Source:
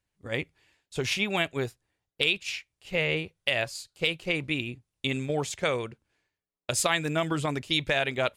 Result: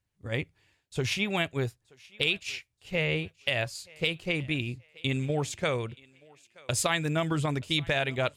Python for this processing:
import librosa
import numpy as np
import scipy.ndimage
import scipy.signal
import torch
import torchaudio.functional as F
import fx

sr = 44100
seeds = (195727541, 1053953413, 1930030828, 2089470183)

p1 = fx.peak_eq(x, sr, hz=100.0, db=8.0, octaves=1.5)
p2 = p1 + fx.echo_thinned(p1, sr, ms=927, feedback_pct=34, hz=510.0, wet_db=-22.5, dry=0)
y = p2 * librosa.db_to_amplitude(-2.0)